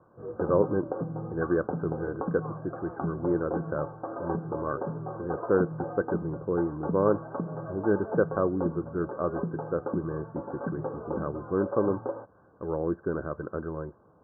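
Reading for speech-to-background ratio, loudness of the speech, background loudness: 5.0 dB, -31.0 LUFS, -36.0 LUFS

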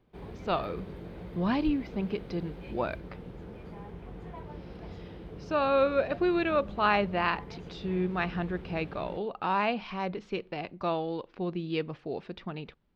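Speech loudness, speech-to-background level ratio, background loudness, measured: -31.0 LUFS, 13.5 dB, -44.5 LUFS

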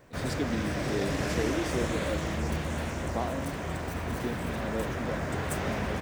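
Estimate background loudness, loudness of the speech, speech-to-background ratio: -32.5 LUFS, -36.5 LUFS, -4.0 dB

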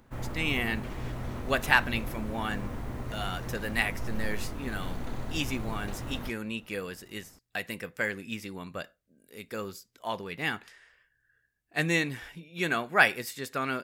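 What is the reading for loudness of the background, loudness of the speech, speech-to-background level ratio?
-39.0 LUFS, -31.5 LUFS, 7.5 dB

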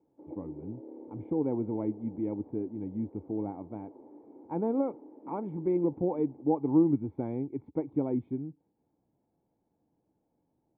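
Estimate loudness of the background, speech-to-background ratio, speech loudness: -50.5 LUFS, 18.5 dB, -32.0 LUFS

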